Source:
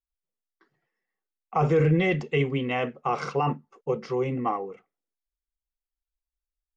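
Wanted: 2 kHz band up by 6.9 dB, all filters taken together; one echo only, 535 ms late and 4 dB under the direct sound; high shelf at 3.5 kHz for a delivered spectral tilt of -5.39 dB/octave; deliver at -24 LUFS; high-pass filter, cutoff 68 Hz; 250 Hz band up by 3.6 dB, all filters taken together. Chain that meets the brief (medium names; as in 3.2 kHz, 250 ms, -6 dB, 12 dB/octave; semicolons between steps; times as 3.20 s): high-pass 68 Hz; peaking EQ 250 Hz +5.5 dB; peaking EQ 2 kHz +6 dB; treble shelf 3.5 kHz +6 dB; delay 535 ms -4 dB; trim -1.5 dB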